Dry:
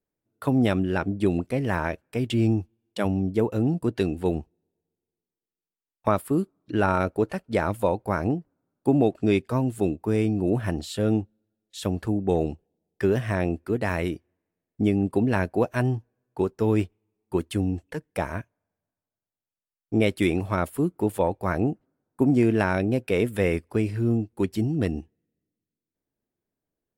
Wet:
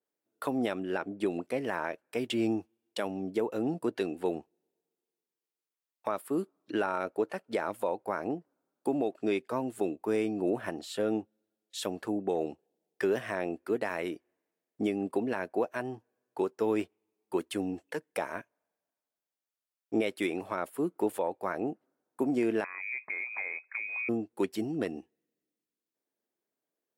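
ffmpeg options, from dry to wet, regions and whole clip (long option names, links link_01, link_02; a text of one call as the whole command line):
ffmpeg -i in.wav -filter_complex "[0:a]asettb=1/sr,asplit=3[link_01][link_02][link_03];[link_01]atrim=end=22.644[link_04];[link_02]atrim=start=22.64:end=24.09,asetpts=PTS-STARTPTS,afade=type=in:duration=0.004:curve=qsin,afade=type=out:start_time=1.446:duration=0.004:curve=qsin,acompressor=threshold=-30dB:ratio=8:attack=3.2:release=140:knee=1:detection=peak,lowpass=frequency=2200:width_type=q:width=0.5098,lowpass=frequency=2200:width_type=q:width=0.6013,lowpass=frequency=2200:width_type=q:width=0.9,lowpass=frequency=2200:width_type=q:width=2.563,afreqshift=-2600[link_05];[link_03]atrim=start=24.086[link_06];[link_04][link_05]acrossfade=duration=0.004:curve1=hsin:curve2=qsin[link_07];[link_07][link_06]acrossfade=duration=0.004:curve1=qsin:curve2=hsin,highpass=350,alimiter=limit=-19dB:level=0:latency=1:release=351,adynamicequalizer=threshold=0.00316:dfrequency=2500:dqfactor=0.7:tfrequency=2500:tqfactor=0.7:attack=5:release=100:ratio=0.375:range=2.5:mode=cutabove:tftype=highshelf" out.wav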